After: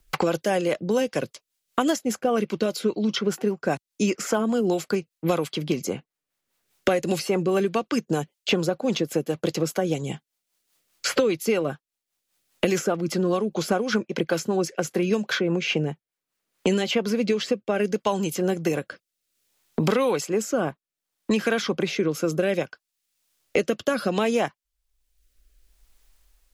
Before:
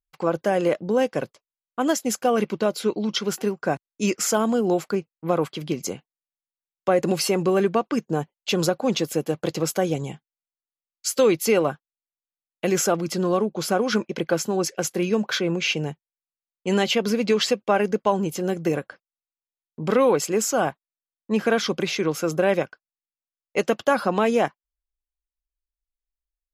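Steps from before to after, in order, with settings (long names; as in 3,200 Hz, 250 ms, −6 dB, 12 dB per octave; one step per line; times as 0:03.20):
rotating-speaker cabinet horn 5 Hz, later 0.65 Hz, at 0:16.24
multiband upward and downward compressor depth 100%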